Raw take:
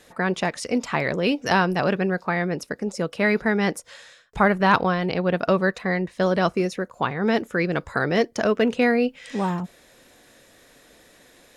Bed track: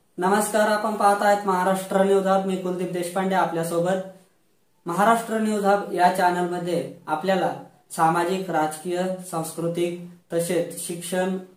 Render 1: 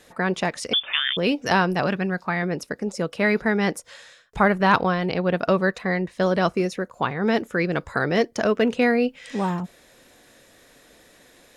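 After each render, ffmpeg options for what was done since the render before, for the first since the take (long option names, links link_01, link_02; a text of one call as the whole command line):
ffmpeg -i in.wav -filter_complex "[0:a]asettb=1/sr,asplit=3[link_01][link_02][link_03];[link_01]atrim=end=0.734[link_04];[link_02]atrim=start=0.73:end=1.17,asetpts=PTS-STARTPTS,afade=type=in:duration=0.004:curve=qsin,afade=type=out:start_time=0.436:duration=0.004:curve=qsin,lowpass=frequency=3100:width_type=q:width=0.5098,lowpass=frequency=3100:width_type=q:width=0.6013,lowpass=frequency=3100:width_type=q:width=0.9,lowpass=frequency=3100:width_type=q:width=2.563,afreqshift=-3700[link_05];[link_03]atrim=start=1.166[link_06];[link_04][link_05]acrossfade=duration=0.004:curve1=hsin:curve2=qsin[link_07];[link_07][link_06]acrossfade=duration=0.004:curve1=qsin:curve2=hsin,asettb=1/sr,asplit=3[link_08][link_09][link_10];[link_08]atrim=end=1.864[link_11];[link_09]atrim=start=1.86:end=2.43,asetpts=PTS-STARTPTS,afade=type=in:duration=0.004:curve=qsin,afade=type=out:start_time=0.566:duration=0.004:curve=qsin,equalizer=frequency=460:width_type=o:width=0.77:gain=-7[link_12];[link_10]atrim=start=2.426[link_13];[link_11][link_12]acrossfade=duration=0.004:curve1=hsin:curve2=qsin[link_14];[link_14][link_13]acrossfade=duration=0.004:curve1=qsin:curve2=hsin" out.wav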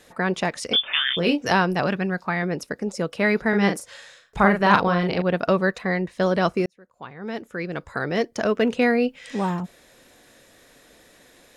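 ffmpeg -i in.wav -filter_complex "[0:a]asettb=1/sr,asplit=3[link_01][link_02][link_03];[link_01]atrim=end=0.714[link_04];[link_02]atrim=start=0.71:end=1.51,asetpts=PTS-STARTPTS,afade=type=in:duration=0.004:curve=qsin,afade=type=out:start_time=0.796:duration=0.004:curve=qsin,asplit=2[link_05][link_06];[link_06]adelay=24,volume=-6dB[link_07];[link_05][link_07]amix=inputs=2:normalize=0,atrim=end_sample=35280[link_08];[link_03]atrim=start=1.506[link_09];[link_04][link_08]acrossfade=duration=0.004:curve1=hsin:curve2=qsin[link_10];[link_10][link_09]acrossfade=duration=0.004:curve1=qsin:curve2=hsin,asettb=1/sr,asplit=3[link_11][link_12][link_13];[link_11]atrim=end=3.494[link_14];[link_12]atrim=start=3.49:end=5.22,asetpts=PTS-STARTPTS,afade=type=in:duration=0.004:curve=qsin,afade=type=out:start_time=1.726:duration=0.004:curve=qsin,asplit=2[link_15][link_16];[link_16]adelay=40,volume=-5dB[link_17];[link_15][link_17]amix=inputs=2:normalize=0,atrim=end_sample=76293[link_18];[link_13]atrim=start=5.216[link_19];[link_14][link_18]acrossfade=duration=0.004:curve1=hsin:curve2=qsin[link_20];[link_20][link_19]acrossfade=duration=0.004:curve1=qsin:curve2=hsin,asplit=2[link_21][link_22];[link_21]atrim=end=6.66,asetpts=PTS-STARTPTS,afade=type=out:start_time=6.656:duration=0.004:curve=hsin[link_23];[link_22]atrim=start=6.66,asetpts=PTS-STARTPTS,afade=type=in:duration=2.06[link_24];[link_23][link_24]concat=n=2:v=0:a=1" out.wav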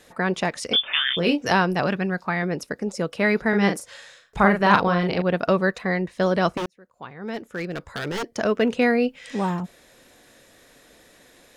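ffmpeg -i in.wav -filter_complex "[0:a]asettb=1/sr,asplit=3[link_01][link_02][link_03];[link_01]atrim=end=6.574[link_04];[link_02]atrim=start=6.57:end=8.26,asetpts=PTS-STARTPTS,afade=type=in:duration=0.004:curve=qsin,afade=type=out:start_time=1.686:duration=0.004:curve=qsin,aeval=exprs='0.0794*(abs(mod(val(0)/0.0794+3,4)-2)-1)':channel_layout=same[link_05];[link_03]atrim=start=8.256[link_06];[link_04][link_05]acrossfade=duration=0.004:curve1=hsin:curve2=qsin[link_07];[link_07][link_06]acrossfade=duration=0.004:curve1=qsin:curve2=hsin" out.wav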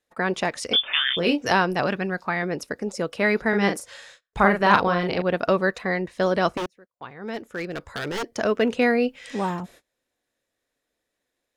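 ffmpeg -i in.wav -af "equalizer=frequency=170:width=2.1:gain=-4.5,agate=range=-27dB:threshold=-47dB:ratio=16:detection=peak" out.wav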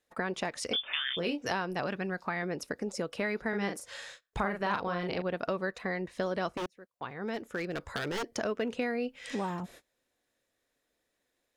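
ffmpeg -i in.wav -af "acompressor=threshold=-33dB:ratio=3" out.wav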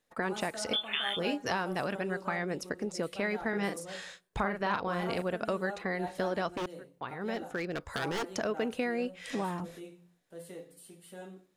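ffmpeg -i in.wav -i bed.wav -filter_complex "[1:a]volume=-22.5dB[link_01];[0:a][link_01]amix=inputs=2:normalize=0" out.wav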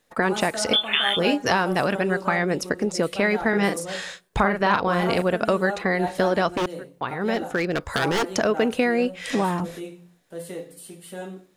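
ffmpeg -i in.wav -af "volume=11dB" out.wav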